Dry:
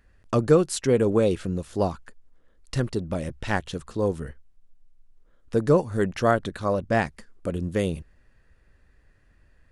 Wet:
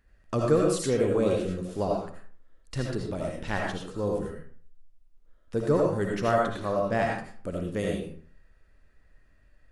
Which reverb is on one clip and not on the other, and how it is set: algorithmic reverb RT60 0.49 s, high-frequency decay 0.7×, pre-delay 40 ms, DRR -1.5 dB; trim -6 dB

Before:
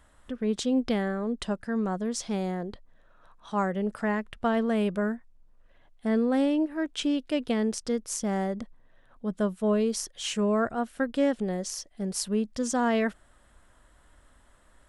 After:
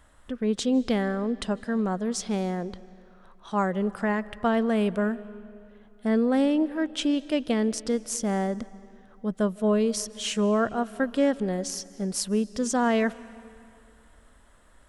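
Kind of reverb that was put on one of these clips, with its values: algorithmic reverb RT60 2.5 s, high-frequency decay 0.8×, pre-delay 115 ms, DRR 19 dB; trim +2 dB

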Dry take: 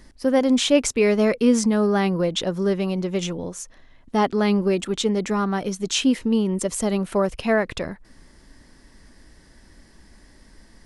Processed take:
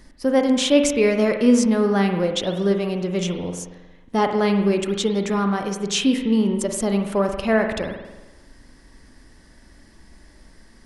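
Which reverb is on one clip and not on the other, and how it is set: spring tank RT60 1.1 s, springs 45 ms, chirp 80 ms, DRR 5 dB

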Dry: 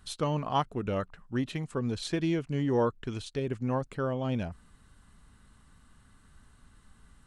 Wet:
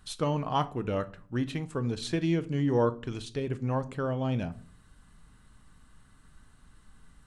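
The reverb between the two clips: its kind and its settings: simulated room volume 410 m³, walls furnished, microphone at 0.52 m

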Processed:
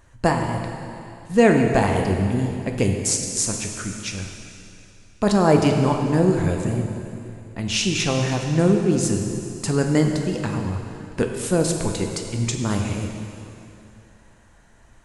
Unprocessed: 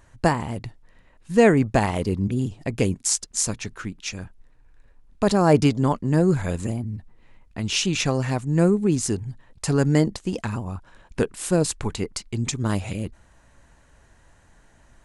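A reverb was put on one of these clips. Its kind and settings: plate-style reverb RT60 2.7 s, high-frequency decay 0.95×, DRR 2.5 dB

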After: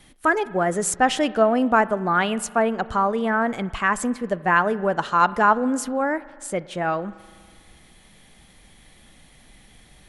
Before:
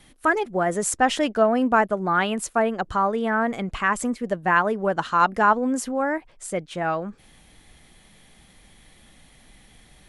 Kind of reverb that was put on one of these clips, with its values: spring tank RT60 1.9 s, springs 40 ms, chirp 25 ms, DRR 17.5 dB; trim +1 dB

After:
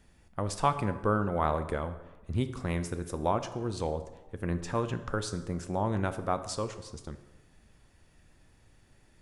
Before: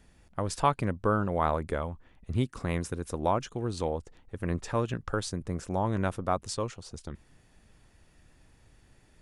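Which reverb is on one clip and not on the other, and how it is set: plate-style reverb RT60 1.1 s, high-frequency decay 0.65×, DRR 9.5 dB; trim -1.5 dB

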